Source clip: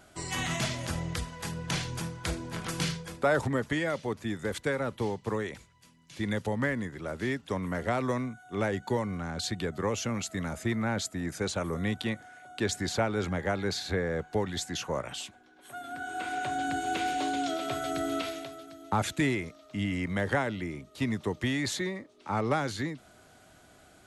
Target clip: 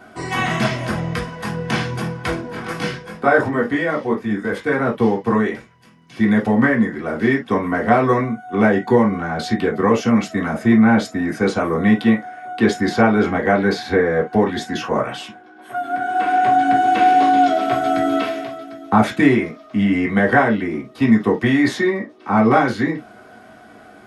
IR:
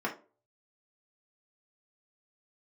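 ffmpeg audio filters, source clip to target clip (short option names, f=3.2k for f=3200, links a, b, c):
-filter_complex "[0:a]asettb=1/sr,asplit=3[a][b][c];[a]atrim=end=2.414[d];[b]atrim=start=2.41:end=4.72,asetpts=PTS-STARTPTS,afade=t=in:d=0.004:c=qsin,afade=t=out:st=2.306:d=0.004:c=qsin,flanger=delay=19.5:depth=2.3:speed=2.7[e];[c]atrim=start=4.716[f];[d][e]acrossfade=d=0.004:c1=hsin:c2=qsin[g];[g][f]acrossfade=d=0.004:c1=qsin:c2=hsin[h];[1:a]atrim=start_sample=2205,atrim=end_sample=3087[i];[h][i]afir=irnorm=-1:irlink=0,volume=6.5dB"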